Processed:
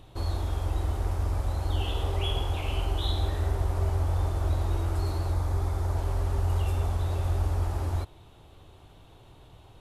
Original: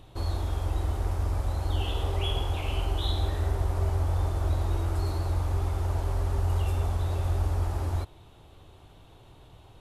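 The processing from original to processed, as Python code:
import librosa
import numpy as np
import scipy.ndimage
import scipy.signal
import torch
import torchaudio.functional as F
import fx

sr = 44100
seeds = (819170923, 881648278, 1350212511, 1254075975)

y = fx.peak_eq(x, sr, hz=2800.0, db=-6.5, octaves=0.35, at=(5.32, 5.97))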